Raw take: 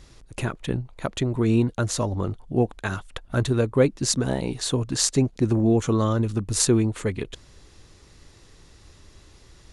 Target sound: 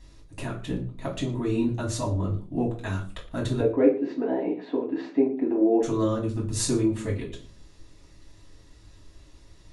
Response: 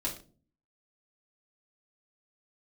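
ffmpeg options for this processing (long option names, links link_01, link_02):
-filter_complex "[0:a]asettb=1/sr,asplit=3[link_01][link_02][link_03];[link_01]atrim=end=3.604[link_04];[link_02]atrim=start=3.6:end=5.83,asetpts=PTS-STARTPTS,afade=type=in:duration=0.004:curve=qsin,afade=type=out:start_time=2.226:duration=0.004:curve=qsin,highpass=frequency=260:width=0.5412,highpass=frequency=260:width=1.3066,equalizer=frequency=280:width_type=q:width=4:gain=5,equalizer=frequency=440:width_type=q:width=4:gain=8,equalizer=frequency=760:width_type=q:width=4:gain=7,equalizer=frequency=1200:width_type=q:width=4:gain=-5,lowpass=frequency=2300:width=0.5412,lowpass=frequency=2300:width=1.3066[link_05];[link_03]atrim=start=5.826[link_06];[link_04][link_05]acrossfade=duration=0.004:curve1=hsin:curve2=qsin[link_07];[link_07][link_06]acrossfade=duration=0.004:curve1=qsin:curve2=hsin[link_08];[1:a]atrim=start_sample=2205[link_09];[link_08][link_09]afir=irnorm=-1:irlink=0,volume=-8dB"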